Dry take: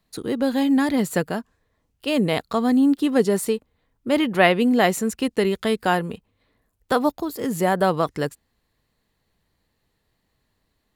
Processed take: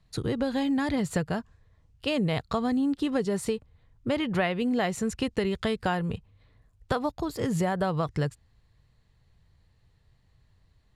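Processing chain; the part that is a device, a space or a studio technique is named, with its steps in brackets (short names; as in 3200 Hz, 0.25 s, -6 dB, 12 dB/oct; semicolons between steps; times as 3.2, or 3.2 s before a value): jukebox (LPF 7600 Hz 12 dB/oct; resonant low shelf 170 Hz +10.5 dB, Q 1.5; compressor 5:1, threshold -24 dBFS, peak gain reduction 12 dB)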